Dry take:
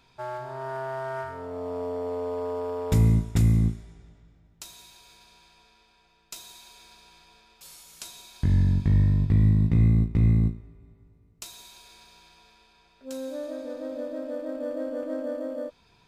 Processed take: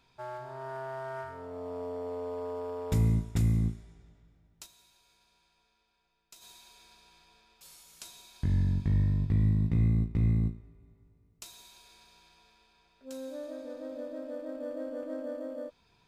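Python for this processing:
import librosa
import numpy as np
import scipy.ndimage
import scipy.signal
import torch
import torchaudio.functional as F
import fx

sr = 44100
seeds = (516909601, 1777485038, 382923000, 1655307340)

y = fx.comb_fb(x, sr, f0_hz=280.0, decay_s=0.72, harmonics='all', damping=0.0, mix_pct=60, at=(4.65, 6.41), fade=0.02)
y = y * librosa.db_to_amplitude(-6.0)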